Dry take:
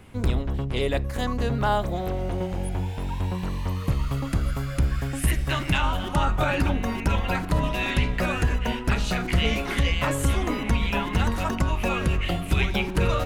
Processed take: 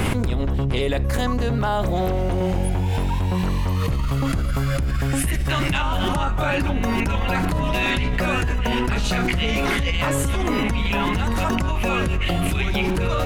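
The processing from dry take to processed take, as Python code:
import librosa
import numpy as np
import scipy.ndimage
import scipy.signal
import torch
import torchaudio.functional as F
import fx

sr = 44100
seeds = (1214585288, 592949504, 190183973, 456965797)

y = fx.env_flatten(x, sr, amount_pct=100)
y = F.gain(torch.from_numpy(y), -3.5).numpy()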